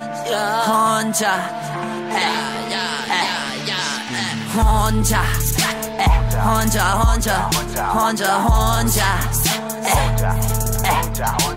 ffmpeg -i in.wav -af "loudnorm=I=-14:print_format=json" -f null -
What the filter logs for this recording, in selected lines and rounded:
"input_i" : "-18.4",
"input_tp" : "-3.6",
"input_lra" : "2.3",
"input_thresh" : "-28.4",